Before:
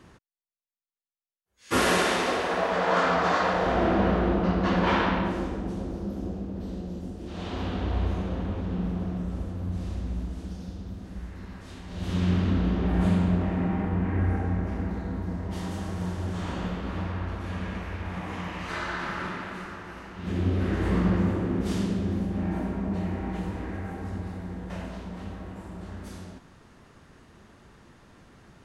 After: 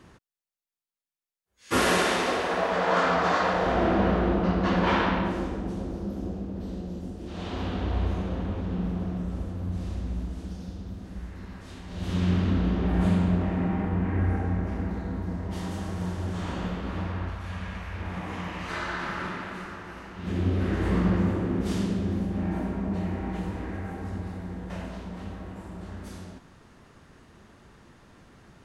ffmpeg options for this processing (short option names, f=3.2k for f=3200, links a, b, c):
-filter_complex "[0:a]asettb=1/sr,asplit=3[a][b][c];[a]atrim=end=17.304[d];[b]atrim=start=17.3:end=17.96,asetpts=PTS-STARTPTS,afade=t=in:d=0.004:c=qsin,afade=t=out:st=0.656:d=0.004:c=qsin,equalizer=f=330:t=o:w=1.5:g=-9.5[e];[c]atrim=start=17.956[f];[d][e]acrossfade=d=0.004:c1=hsin:c2=qsin[g];[g][f]acrossfade=d=0.004:c1=qsin:c2=hsin"